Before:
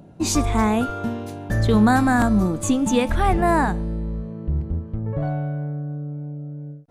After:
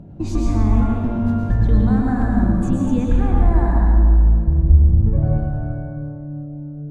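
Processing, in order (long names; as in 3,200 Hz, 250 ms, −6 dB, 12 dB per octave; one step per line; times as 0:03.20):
downward compressor, threshold −25 dBFS, peak gain reduction 12.5 dB
RIAA equalisation playback
dense smooth reverb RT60 2.2 s, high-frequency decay 0.5×, pre-delay 95 ms, DRR −2.5 dB
level −3 dB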